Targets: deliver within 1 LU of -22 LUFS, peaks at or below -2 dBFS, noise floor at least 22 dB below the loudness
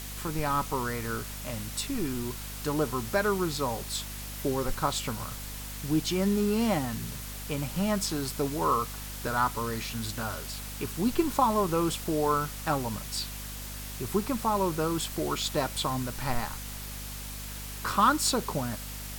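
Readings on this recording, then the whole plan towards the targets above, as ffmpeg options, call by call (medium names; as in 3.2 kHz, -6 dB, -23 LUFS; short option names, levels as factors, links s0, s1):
hum 50 Hz; highest harmonic 250 Hz; hum level -39 dBFS; noise floor -39 dBFS; noise floor target -52 dBFS; loudness -30.0 LUFS; peak level -10.5 dBFS; loudness target -22.0 LUFS
-> -af "bandreject=f=50:t=h:w=6,bandreject=f=100:t=h:w=6,bandreject=f=150:t=h:w=6,bandreject=f=200:t=h:w=6,bandreject=f=250:t=h:w=6"
-af "afftdn=nr=13:nf=-39"
-af "volume=2.51"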